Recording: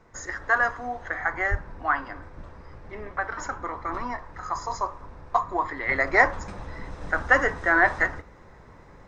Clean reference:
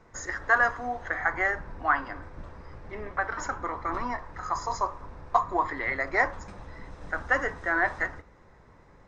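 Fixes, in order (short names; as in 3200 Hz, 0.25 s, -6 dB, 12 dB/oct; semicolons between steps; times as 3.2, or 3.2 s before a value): 1.5–1.62 HPF 140 Hz 24 dB/oct; gain 0 dB, from 5.89 s -6 dB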